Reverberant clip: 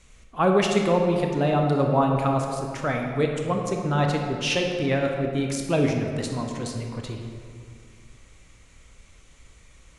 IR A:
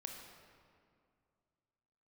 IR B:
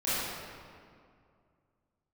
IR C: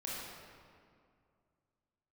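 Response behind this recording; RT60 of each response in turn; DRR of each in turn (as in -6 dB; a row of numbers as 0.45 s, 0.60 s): A; 2.3 s, 2.3 s, 2.3 s; 2.0 dB, -13.5 dB, -6.5 dB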